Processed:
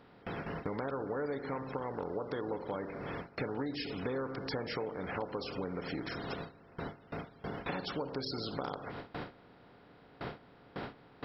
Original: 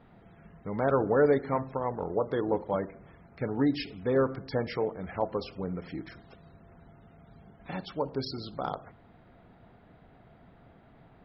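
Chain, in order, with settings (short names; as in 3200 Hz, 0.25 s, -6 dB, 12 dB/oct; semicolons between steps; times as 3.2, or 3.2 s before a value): per-bin compression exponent 0.6; notch 650 Hz, Q 12; gate with hold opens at -31 dBFS; high shelf 2200 Hz +7.5 dB; compressor 6:1, threshold -39 dBFS, peak gain reduction 20 dB; gain +3.5 dB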